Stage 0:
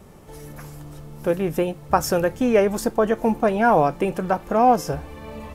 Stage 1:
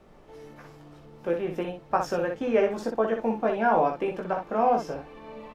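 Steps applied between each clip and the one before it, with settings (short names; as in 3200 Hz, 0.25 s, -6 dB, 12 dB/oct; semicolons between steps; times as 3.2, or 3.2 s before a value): three-band isolator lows -13 dB, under 190 Hz, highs -19 dB, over 5000 Hz; on a send: early reflections 18 ms -4 dB, 61 ms -5.5 dB; on the sum: added noise brown -51 dBFS; gain -7.5 dB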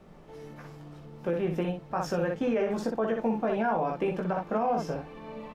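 bell 170 Hz +8 dB 0.59 oct; limiter -19.5 dBFS, peak gain reduction 10 dB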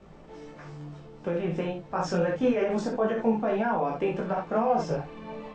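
steep low-pass 8500 Hz 96 dB/oct; detuned doubles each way 14 cents; gain +5.5 dB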